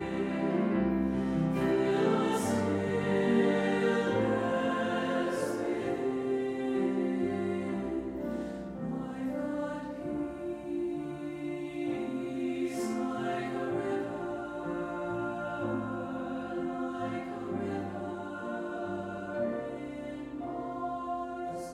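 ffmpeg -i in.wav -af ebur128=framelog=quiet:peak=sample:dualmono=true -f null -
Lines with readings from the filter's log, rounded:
Integrated loudness:
  I:         -29.7 LUFS
  Threshold: -39.7 LUFS
Loudness range:
  LRA:         7.7 LU
  Threshold: -49.8 LUFS
  LRA low:   -33.4 LUFS
  LRA high:  -25.7 LUFS
Sample peak:
  Peak:      -15.4 dBFS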